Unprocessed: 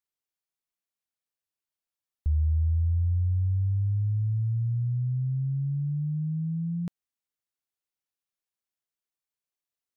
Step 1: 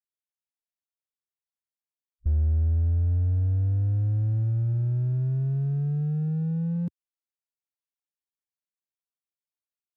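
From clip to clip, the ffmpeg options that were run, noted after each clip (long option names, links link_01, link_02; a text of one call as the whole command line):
ffmpeg -i in.wav -filter_complex "[0:a]afwtdn=0.0316,asplit=2[link_01][link_02];[link_02]asoftclip=type=hard:threshold=-33dB,volume=-3.5dB[link_03];[link_01][link_03]amix=inputs=2:normalize=0" out.wav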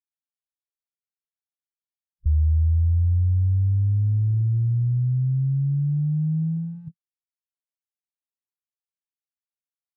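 ffmpeg -i in.wav -af "equalizer=frequency=370:width=4.2:gain=14,afftfilt=real='re*(1-between(b*sr/4096,170,730))':imag='im*(1-between(b*sr/4096,170,730))':win_size=4096:overlap=0.75,afwtdn=0.0282,volume=3.5dB" out.wav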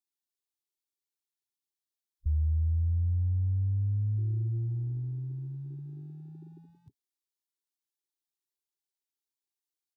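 ffmpeg -i in.wav -af "firequalizer=gain_entry='entry(110,0);entry(170,-20);entry(270,9);entry(400,14);entry(570,-29);entry(820,9);entry(1200,-2);entry(1800,1);entry(2600,4);entry(3700,11)':delay=0.05:min_phase=1,volume=-8dB" out.wav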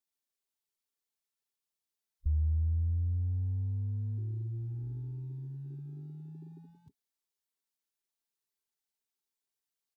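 ffmpeg -i in.wav -af "aecho=1:1:4.5:0.52" out.wav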